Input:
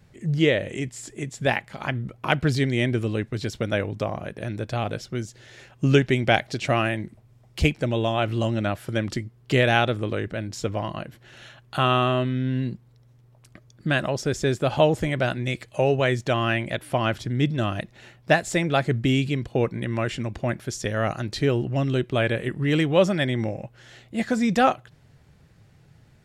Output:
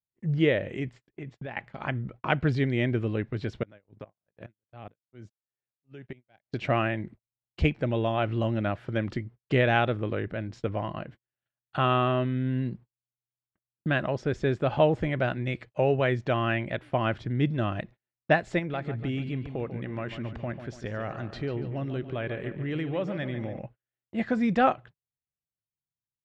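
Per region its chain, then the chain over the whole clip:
0.93–1.57 LPF 4600 Hz + compressor, threshold -31 dBFS
3.63–6.46 HPF 73 Hz 24 dB/oct + compressor 4:1, threshold -33 dBFS + dB-ramp tremolo swelling 2.4 Hz, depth 18 dB
18.59–23.59 compressor 2:1, threshold -30 dBFS + darkening echo 0.144 s, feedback 49%, low-pass 4400 Hz, level -10 dB
whole clip: LPF 2600 Hz 12 dB/oct; gate -41 dBFS, range -45 dB; gain -3 dB

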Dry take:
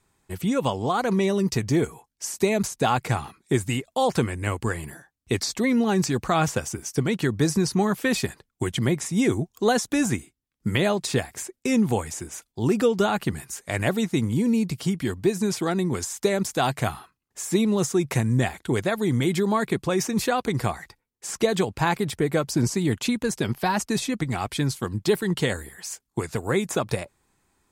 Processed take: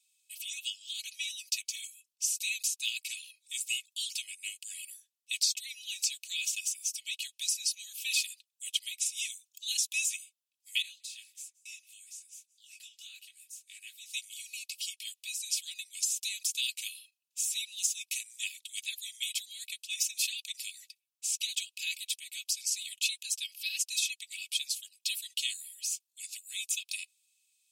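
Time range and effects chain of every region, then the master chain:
10.82–14.06 resonant high shelf 1800 Hz -8 dB, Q 1.5 + echo 0.175 s -23 dB + detuned doubles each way 58 cents
whole clip: Chebyshev high-pass 2500 Hz, order 6; comb 3.1 ms

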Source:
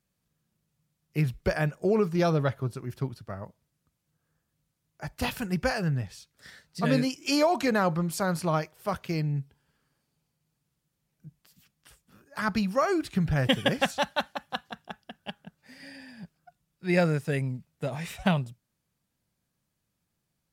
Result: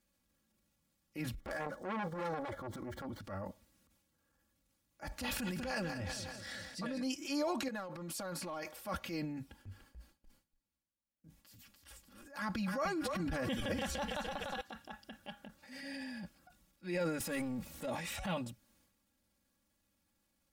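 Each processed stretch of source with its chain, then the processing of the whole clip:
1.4–3.2 median filter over 9 samples + Butterworth band-stop 2600 Hz, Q 3.9 + core saturation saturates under 1200 Hz
5.11–7.03 bell 13000 Hz -7.5 dB 0.29 oct + negative-ratio compressor -31 dBFS + feedback echo 0.192 s, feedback 53%, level -14 dB
7.68–8.78 low shelf 130 Hz -9 dB + compressor 16:1, threshold -36 dBFS + overloaded stage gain 33.5 dB
9.36–14.61 frequency-shifting echo 0.292 s, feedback 36%, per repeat -40 Hz, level -9.5 dB + gate with hold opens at -57 dBFS, closes at -62 dBFS
17.2–17.86 high shelf 4900 Hz +6 dB + power-law curve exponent 0.7
whole clip: comb 3.6 ms, depth 97%; compressor 2.5:1, threshold -37 dBFS; transient shaper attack -8 dB, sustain +8 dB; gain -1.5 dB

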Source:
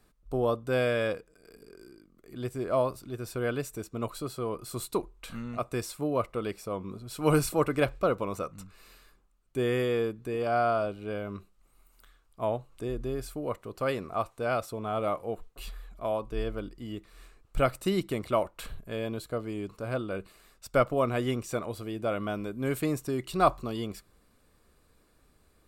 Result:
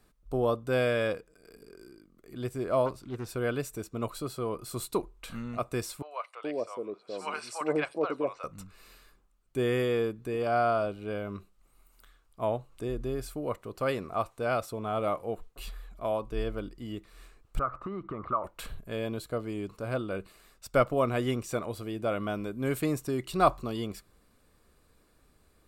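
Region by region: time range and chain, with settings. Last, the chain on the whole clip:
2.86–3.29 high shelf 9600 Hz -10.5 dB + Doppler distortion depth 0.28 ms
6.02–8.44 speaker cabinet 370–7600 Hz, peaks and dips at 1300 Hz -4 dB, 3400 Hz -5 dB, 6700 Hz -5 dB + three bands offset in time mids, highs, lows 90/420 ms, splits 750/5300 Hz
17.59–18.44 compressor 10:1, threshold -33 dBFS + synth low-pass 1200 Hz, resonance Q 11
whole clip: dry

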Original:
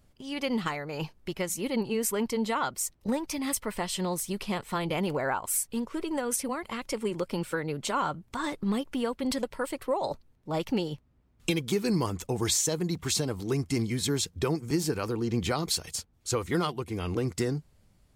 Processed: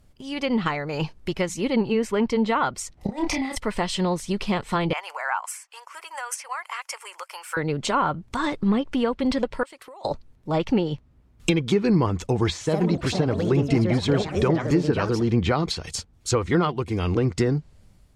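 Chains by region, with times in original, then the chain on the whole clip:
2.97–3.58 small resonant body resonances 750/2000 Hz, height 13 dB, ringing for 25 ms + negative-ratio compressor -34 dBFS, ratio -0.5 + doubler 30 ms -4 dB
4.93–7.57 inverse Chebyshev high-pass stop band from 250 Hz, stop band 60 dB + bell 3800 Hz -11.5 dB 0.47 oct
9.63–10.05 HPF 1200 Hz 6 dB/oct + compressor 16:1, threshold -46 dBFS
12.52–15.94 block floating point 7-bit + echoes that change speed 91 ms, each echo +4 st, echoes 3, each echo -6 dB
whole clip: treble ducked by the level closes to 2400 Hz, closed at -23.5 dBFS; low shelf 100 Hz +5 dB; AGC gain up to 3.5 dB; gain +3 dB

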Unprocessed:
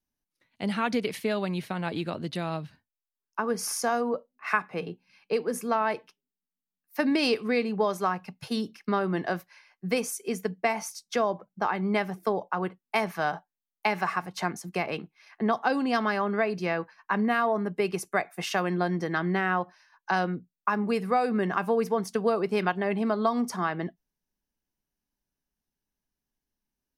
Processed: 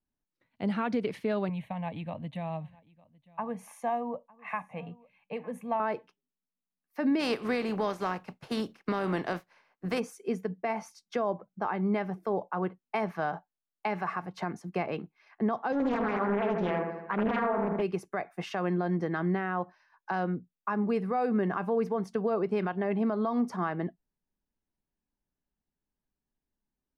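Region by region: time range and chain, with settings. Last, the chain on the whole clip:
1.49–5.8 fixed phaser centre 1400 Hz, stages 6 + echo 0.905 s -24 dB
7.19–9.98 spectral contrast lowered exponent 0.6 + bell 80 Hz -8 dB 0.75 oct + mismatched tape noise reduction decoder only
15.72–17.82 LPF 4600 Hz + dark delay 79 ms, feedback 57%, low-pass 1800 Hz, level -4.5 dB + Doppler distortion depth 0.68 ms
whole clip: LPF 1200 Hz 6 dB/oct; limiter -20 dBFS

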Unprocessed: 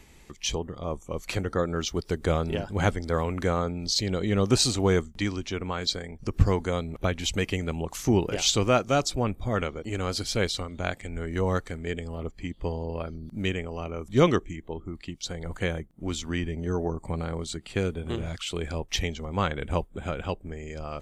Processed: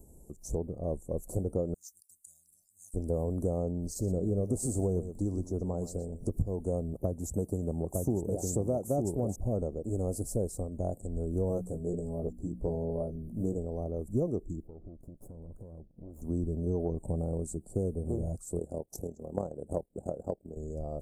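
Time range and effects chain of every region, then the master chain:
1.74–2.94 expander -40 dBFS + inverse Chebyshev high-pass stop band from 1200 Hz, stop band 50 dB
3.88–6.39 doubler 12 ms -12.5 dB + echo 0.119 s -14.5 dB + mismatched tape noise reduction encoder only
6.93–9.36 HPF 60 Hz + echo 0.908 s -4 dB
11.48–13.58 notches 60/120/180/240/300 Hz + doubler 17 ms -4 dB
14.67–16.22 minimum comb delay 0.59 ms + resonant high shelf 2800 Hz -12 dB, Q 1.5 + compressor 8:1, threshold -42 dBFS
18.59–20.57 transient shaper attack +6 dB, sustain -5 dB + HPF 250 Hz 6 dB/oct + AM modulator 38 Hz, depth 50%
whole clip: elliptic band-stop 640–8600 Hz, stop band 80 dB; high shelf 5200 Hz +3.5 dB; compressor 10:1, threshold -26 dBFS

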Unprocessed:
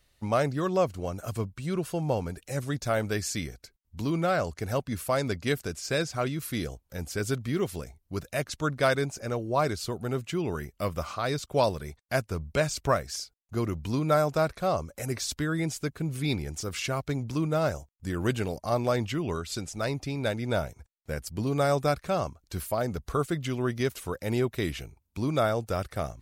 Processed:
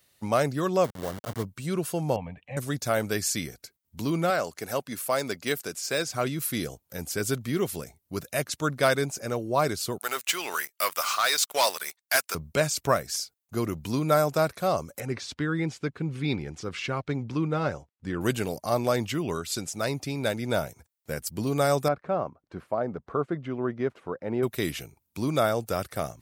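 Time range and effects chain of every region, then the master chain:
0.84–1.43 level-crossing sampler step -33 dBFS + high shelf 5200 Hz -5.5 dB + notch 2500 Hz, Q 6.6
2.16–2.57 LPF 3000 Hz 24 dB/oct + fixed phaser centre 1400 Hz, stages 6
4.3–6.07 HPF 330 Hz 6 dB/oct + de-esser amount 70%
9.98–12.35 HPF 1200 Hz + sample leveller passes 3
15–18.21 LPF 3200 Hz + notch 640 Hz, Q 8
21.88–24.43 LPF 1300 Hz + bell 64 Hz -8.5 dB 2.2 oct
whole clip: HPF 120 Hz 12 dB/oct; high shelf 9000 Hz +11 dB; gain +1.5 dB

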